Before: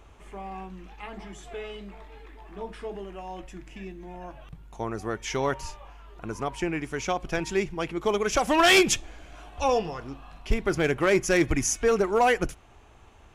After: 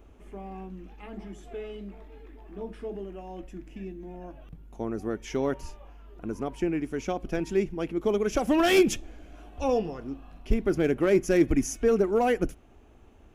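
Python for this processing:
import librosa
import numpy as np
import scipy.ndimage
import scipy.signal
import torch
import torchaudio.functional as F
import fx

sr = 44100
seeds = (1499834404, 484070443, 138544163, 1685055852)

y = fx.graphic_eq(x, sr, hz=(125, 250, 1000, 2000, 4000, 8000), db=(-5, 6, -8, -5, -7, -8))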